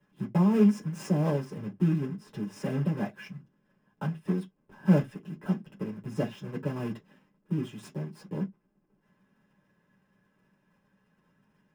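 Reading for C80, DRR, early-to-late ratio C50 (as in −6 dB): 32.0 dB, −3.0 dB, 21.0 dB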